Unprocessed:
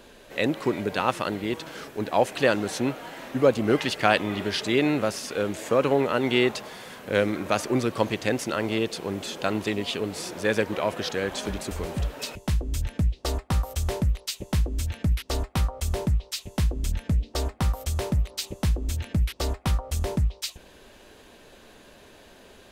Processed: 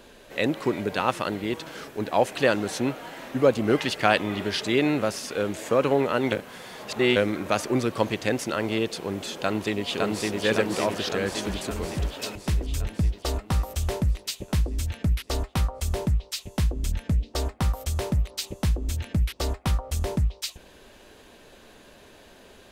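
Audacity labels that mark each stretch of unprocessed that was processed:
6.320000	7.160000	reverse
9.340000	10.420000	delay throw 560 ms, feedback 65%, level −1.5 dB

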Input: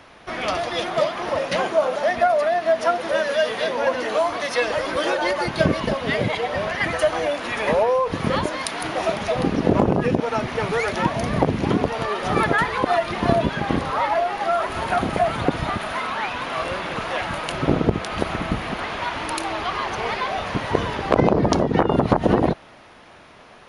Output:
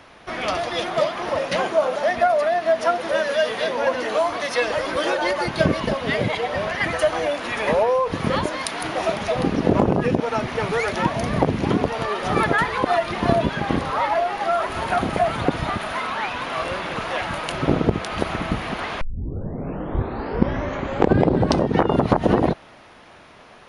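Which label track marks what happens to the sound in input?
19.010000	19.010000	tape start 2.76 s

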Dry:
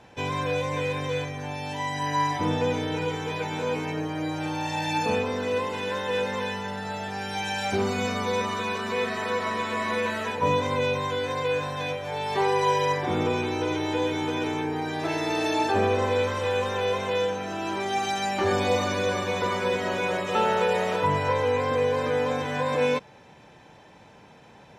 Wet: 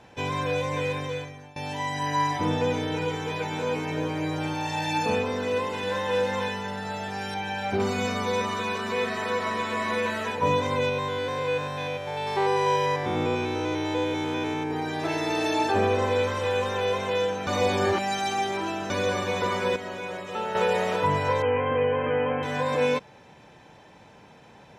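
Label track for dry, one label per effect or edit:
0.900000	1.560000	fade out, to −20.5 dB
3.570000	4.190000	delay throw 340 ms, feedback 30%, level −7.5 dB
5.790000	6.480000	double-tracking delay 42 ms −6.5 dB
7.340000	7.800000	parametric band 8,000 Hz −13 dB 1.9 octaves
10.890000	14.710000	spectrum averaged block by block every 100 ms
17.470000	18.900000	reverse
19.760000	20.550000	clip gain −7.5 dB
21.420000	22.430000	linear-phase brick-wall low-pass 3,200 Hz

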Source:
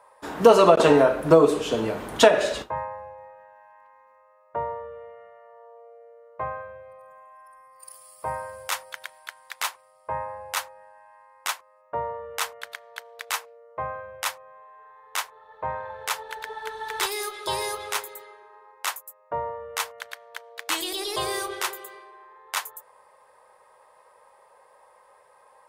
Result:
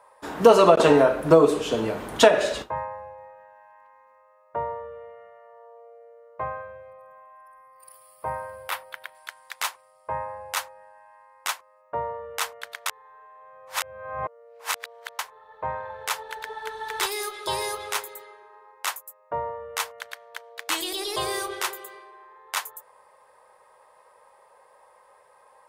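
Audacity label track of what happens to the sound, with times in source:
6.900000	9.150000	parametric band 6,700 Hz −14 dB 0.98 octaves
12.860000	15.190000	reverse

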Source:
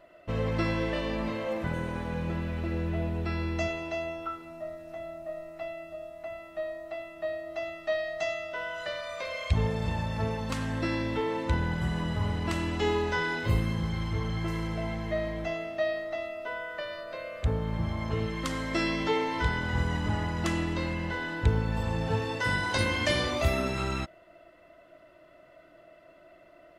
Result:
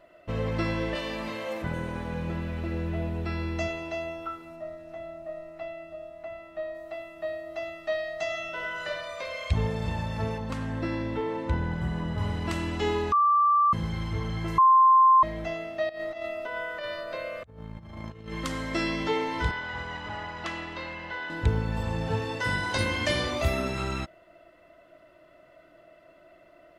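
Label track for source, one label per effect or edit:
0.950000	1.620000	spectral tilt +2 dB per octave
4.550000	6.740000	high-shelf EQ 9,100 Hz → 6,100 Hz −11 dB
8.260000	8.880000	thrown reverb, RT60 1.1 s, DRR 1 dB
10.380000	12.180000	high-shelf EQ 2,500 Hz −9 dB
13.120000	13.730000	beep over 1,170 Hz −18 dBFS
14.580000	15.230000	beep over 1,050 Hz −14 dBFS
15.890000	18.320000	compressor whose output falls as the input rises −36 dBFS, ratio −0.5
19.510000	21.300000	three-way crossover with the lows and the highs turned down lows −14 dB, under 500 Hz, highs −17 dB, over 5,200 Hz

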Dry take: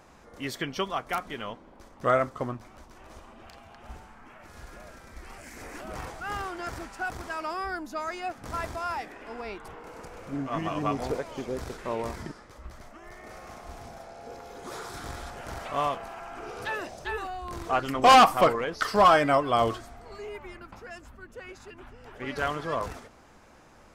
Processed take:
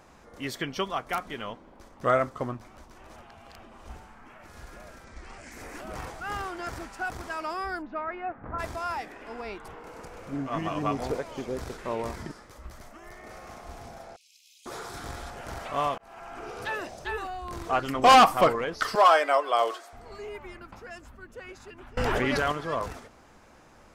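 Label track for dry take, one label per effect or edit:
3.160000	3.890000	reverse
5.040000	5.520000	low-pass filter 8,200 Hz 24 dB per octave
7.810000	8.580000	low-pass filter 2,900 Hz → 1,600 Hz 24 dB per octave
12.300000	13.120000	high-shelf EQ 8,000 Hz +8 dB
14.160000	14.660000	Butterworth high-pass 2,500 Hz 72 dB per octave
15.980000	16.430000	fade in equal-power
18.950000	19.930000	high-pass filter 430 Hz 24 dB per octave
21.970000	22.520000	envelope flattener amount 100%

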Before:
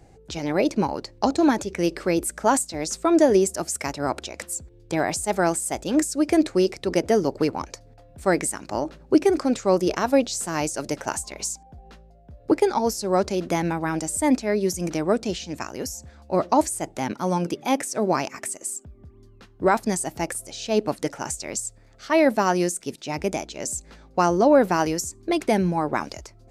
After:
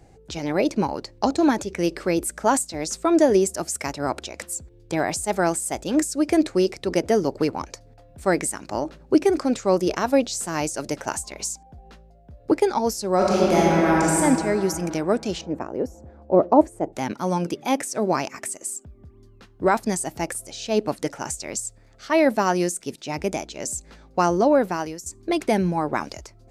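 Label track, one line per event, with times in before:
13.160000	14.180000	thrown reverb, RT60 2.9 s, DRR −6 dB
15.410000	16.930000	drawn EQ curve 140 Hz 0 dB, 480 Hz +8 dB, 4,700 Hz −20 dB
24.370000	25.060000	fade out, to −13 dB

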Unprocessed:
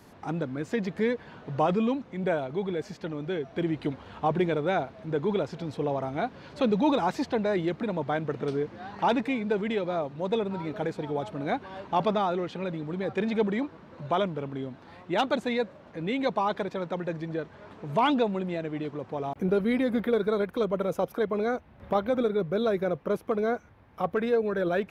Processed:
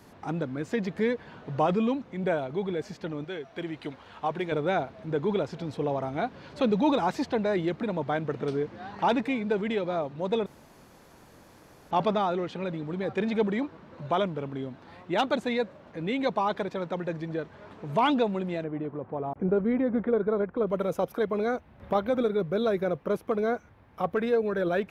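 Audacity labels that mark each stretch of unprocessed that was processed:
3.240000	4.520000	low-shelf EQ 480 Hz −10 dB
10.460000	11.910000	fill with room tone
18.640000	20.670000	low-pass filter 1,400 Hz

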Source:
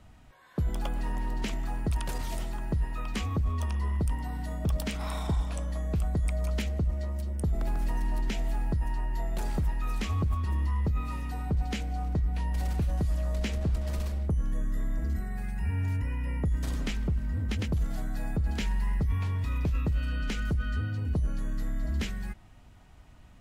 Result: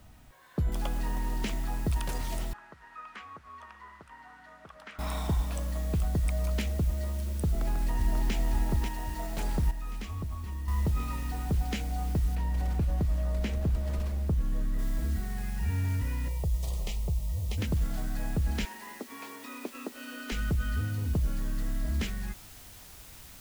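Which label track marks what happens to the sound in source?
0.720000	0.720000	noise floor change −68 dB −51 dB
2.530000	4.990000	resonant band-pass 1,400 Hz, Q 2.3
7.450000	8.340000	delay throw 540 ms, feedback 70%, level −4.5 dB
9.710000	10.680000	clip gain −8 dB
12.350000	14.790000	high-shelf EQ 2,700 Hz −7.5 dB
16.280000	17.580000	phaser with its sweep stopped centre 640 Hz, stages 4
18.650000	20.320000	elliptic high-pass filter 240 Hz

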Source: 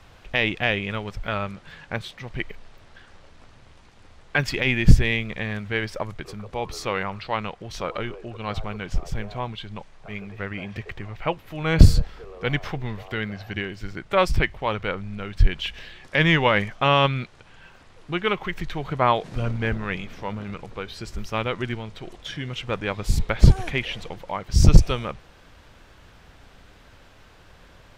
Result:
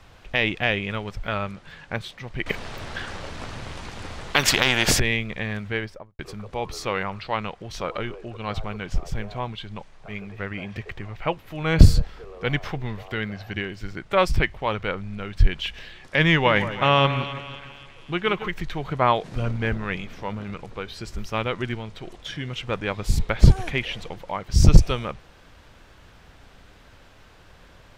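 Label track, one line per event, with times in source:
2.460000	5.000000	every bin compressed towards the loudest bin 4 to 1
5.660000	6.190000	fade out and dull
16.290000	18.480000	echo with a time of its own for lows and highs split 1,600 Hz, lows 163 ms, highs 265 ms, level −11.5 dB

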